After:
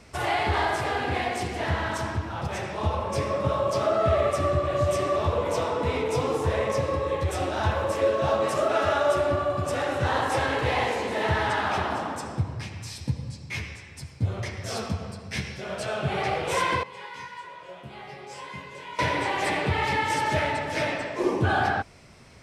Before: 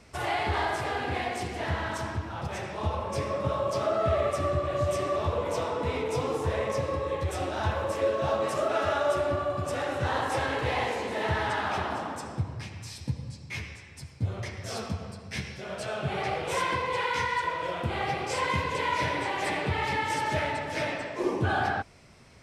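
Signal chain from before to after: 16.83–18.99 s: chord resonator C#3 sus4, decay 0.26 s; trim +3.5 dB

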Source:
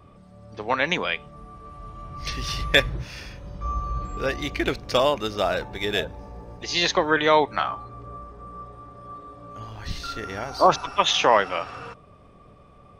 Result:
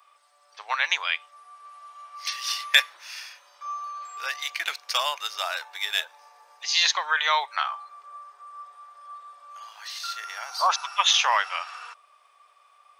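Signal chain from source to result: high-pass 900 Hz 24 dB/octave; treble shelf 4 kHz +8.5 dB; trim -1.5 dB

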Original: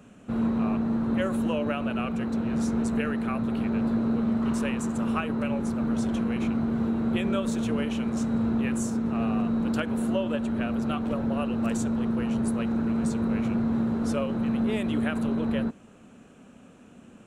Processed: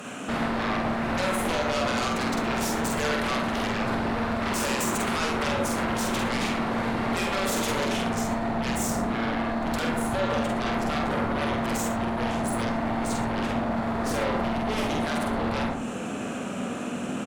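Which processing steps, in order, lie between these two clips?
high-pass 790 Hz 6 dB/octave, from 7.84 s 280 Hz; peak limiter -25.5 dBFS, peak gain reduction 10.5 dB; compression 6:1, threshold -39 dBFS, peak gain reduction 9.5 dB; sine folder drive 13 dB, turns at -28 dBFS; doubling 47 ms -3 dB; reverberation RT60 0.50 s, pre-delay 57 ms, DRR 4.5 dB; trim +3 dB

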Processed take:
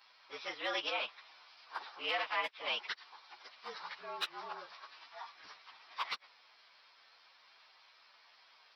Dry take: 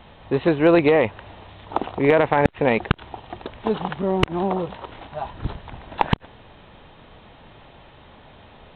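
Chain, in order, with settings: frequency axis rescaled in octaves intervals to 112%; high-pass 1.5 kHz 12 dB/octave; trim -5 dB

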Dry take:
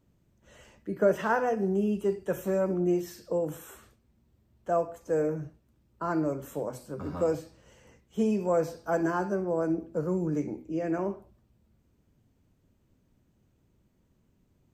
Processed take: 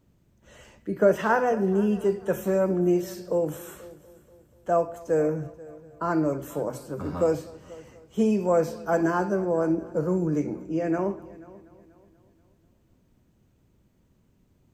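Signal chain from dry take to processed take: multi-head delay 242 ms, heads first and second, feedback 42%, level -22.5 dB; trim +4 dB

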